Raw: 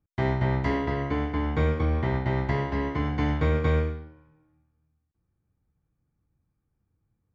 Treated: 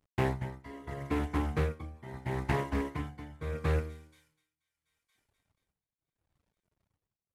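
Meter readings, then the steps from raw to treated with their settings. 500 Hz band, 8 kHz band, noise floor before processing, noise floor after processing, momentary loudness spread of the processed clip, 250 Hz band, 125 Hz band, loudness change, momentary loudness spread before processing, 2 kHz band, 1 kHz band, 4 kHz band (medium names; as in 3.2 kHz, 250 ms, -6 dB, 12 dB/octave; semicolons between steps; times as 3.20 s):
-7.5 dB, no reading, -78 dBFS, under -85 dBFS, 13 LU, -8.0 dB, -8.5 dB, -8.0 dB, 4 LU, -7.5 dB, -7.0 dB, -6.5 dB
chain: CVSD coder 64 kbps; reverb removal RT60 1.5 s; on a send: feedback echo behind a high-pass 481 ms, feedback 50%, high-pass 3.8 kHz, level -16 dB; on the sum: tremolo 0.76 Hz, depth 89%; loudspeaker Doppler distortion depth 0.51 ms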